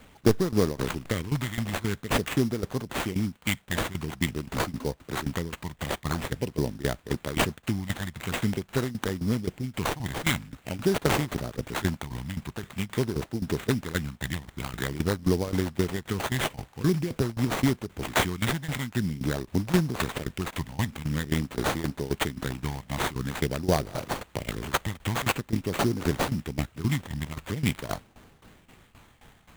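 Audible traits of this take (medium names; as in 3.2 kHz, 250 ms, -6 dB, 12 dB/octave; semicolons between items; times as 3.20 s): tremolo saw down 3.8 Hz, depth 85%; phasing stages 12, 0.47 Hz, lowest notch 420–3100 Hz; aliases and images of a low sample rate 5.3 kHz, jitter 20%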